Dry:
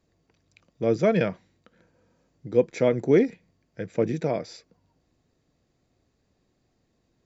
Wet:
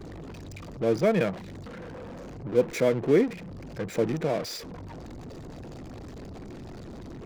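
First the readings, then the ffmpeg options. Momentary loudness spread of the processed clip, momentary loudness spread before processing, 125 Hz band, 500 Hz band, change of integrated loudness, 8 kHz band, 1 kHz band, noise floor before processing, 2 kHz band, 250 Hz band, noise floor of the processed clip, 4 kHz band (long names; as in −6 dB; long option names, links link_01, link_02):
19 LU, 11 LU, −1.0 dB, −1.5 dB, −2.0 dB, can't be measured, 0.0 dB, −72 dBFS, 0.0 dB, −1.5 dB, −42 dBFS, +4.5 dB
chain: -af "aeval=exprs='val(0)+0.5*0.0376*sgn(val(0))':channel_layout=same,anlmdn=15.8,lowshelf=frequency=140:gain=-3,volume=-2.5dB"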